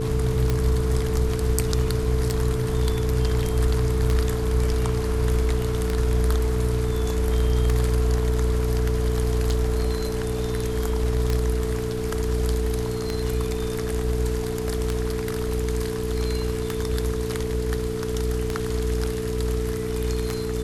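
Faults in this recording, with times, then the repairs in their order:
hum 60 Hz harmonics 7 -29 dBFS
tick 33 1/3 rpm -10 dBFS
tone 440 Hz -28 dBFS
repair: de-click; de-hum 60 Hz, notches 7; notch 440 Hz, Q 30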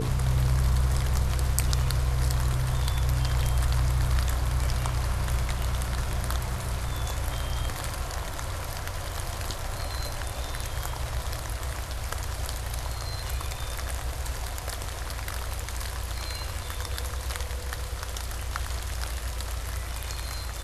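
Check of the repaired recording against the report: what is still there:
none

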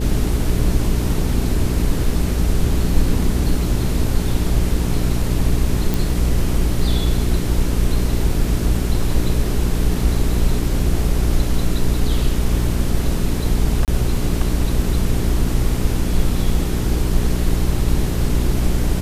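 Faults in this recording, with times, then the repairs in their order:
hum 60 Hz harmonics 7 -21 dBFS
5.94 pop
13.85–13.88 gap 28 ms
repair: de-click; de-hum 60 Hz, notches 7; interpolate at 13.85, 28 ms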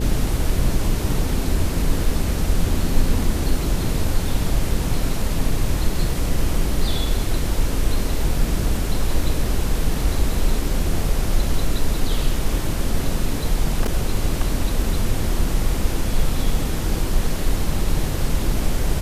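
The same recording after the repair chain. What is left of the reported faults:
none

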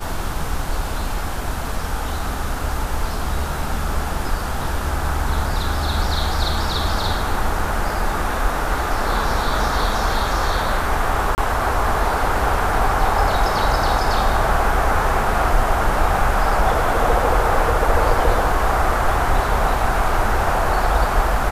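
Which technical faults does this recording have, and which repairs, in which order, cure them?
11.35–11.38 gap 29 ms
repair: interpolate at 11.35, 29 ms

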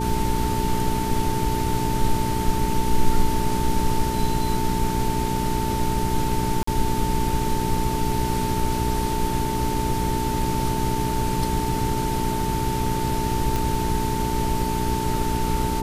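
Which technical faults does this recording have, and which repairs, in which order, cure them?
hum 60 Hz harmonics 7 -27 dBFS
tone 890 Hz -27 dBFS
6.63–6.67 gap 44 ms
13.56 pop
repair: de-click; notch 890 Hz, Q 30; de-hum 60 Hz, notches 7; interpolate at 6.63, 44 ms

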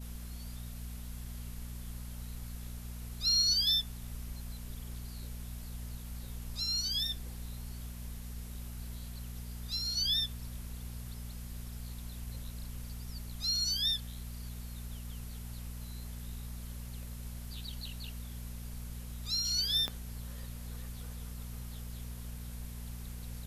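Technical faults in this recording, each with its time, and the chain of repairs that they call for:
hum 60 Hz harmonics 4 -43 dBFS
19.88 pop -20 dBFS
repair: de-click; de-hum 60 Hz, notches 4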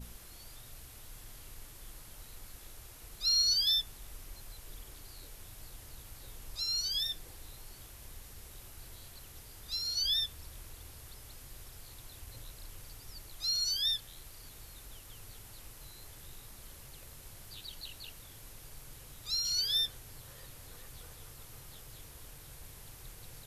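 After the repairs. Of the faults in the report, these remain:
19.88 pop

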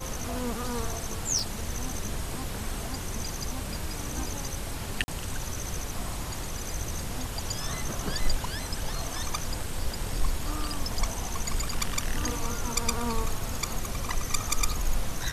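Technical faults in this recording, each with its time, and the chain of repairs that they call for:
1.39 pop
5.04–5.08 gap 40 ms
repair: de-click; interpolate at 5.04, 40 ms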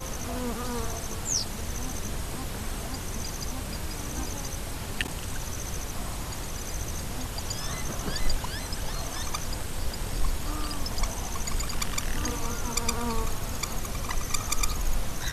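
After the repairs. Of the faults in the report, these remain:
none

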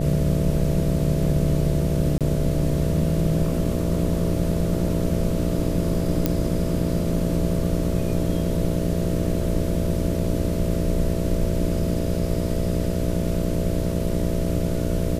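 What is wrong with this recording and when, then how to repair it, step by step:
buzz 60 Hz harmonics 11 -27 dBFS
2.18–2.21 gap 27 ms
6.26 pop -6 dBFS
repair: de-click; de-hum 60 Hz, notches 11; interpolate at 2.18, 27 ms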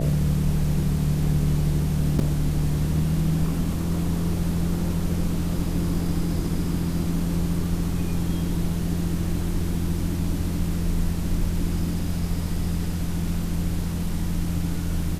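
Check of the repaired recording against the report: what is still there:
none

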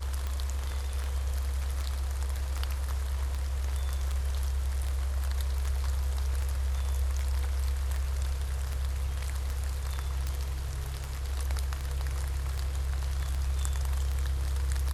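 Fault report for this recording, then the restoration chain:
tick 78 rpm -21 dBFS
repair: de-click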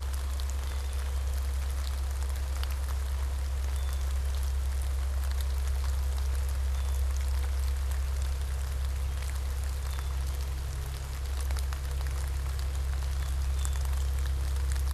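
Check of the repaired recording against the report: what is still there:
none

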